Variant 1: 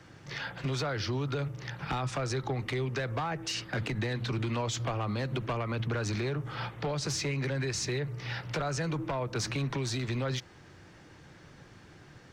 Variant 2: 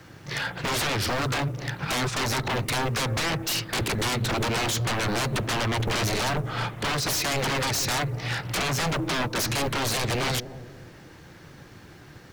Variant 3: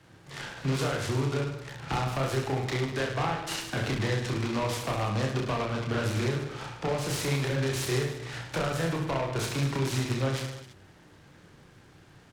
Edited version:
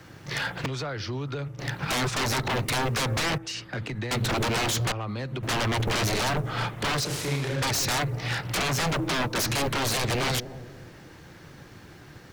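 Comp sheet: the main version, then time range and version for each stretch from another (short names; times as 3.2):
2
0.66–1.59 from 1
3.38–4.11 from 1
4.92–5.43 from 1
7.05–7.62 from 3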